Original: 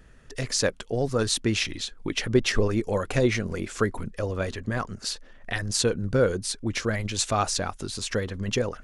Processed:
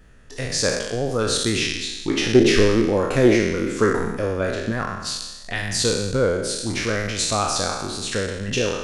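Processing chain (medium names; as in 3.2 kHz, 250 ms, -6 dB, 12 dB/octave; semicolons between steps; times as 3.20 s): spectral sustain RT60 1.08 s; 2.08–4.72 s: peaking EQ 330 Hz +6.5 dB 1.4 oct; loudspeaker Doppler distortion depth 0.1 ms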